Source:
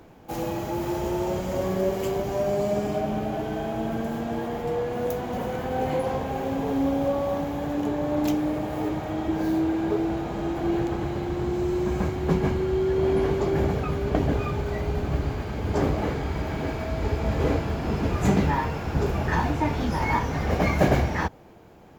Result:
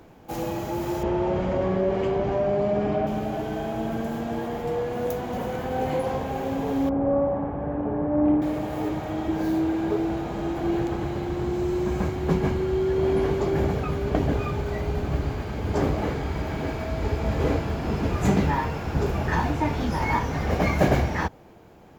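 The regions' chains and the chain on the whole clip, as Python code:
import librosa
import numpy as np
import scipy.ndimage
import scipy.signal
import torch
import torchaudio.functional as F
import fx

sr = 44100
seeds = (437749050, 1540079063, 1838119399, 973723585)

y = fx.chain(x, sr, fx.lowpass(hz=2700.0, slope=12),
    fx.env_flatten(amount_pct=50), at=(1.03, 3.07))
y = fx.chain(y, sr, fx.bessel_lowpass(hz=1200.0, order=4),
    fx.room_flutter(wall_m=9.8, rt60_s=0.62), at=(6.89, 8.42))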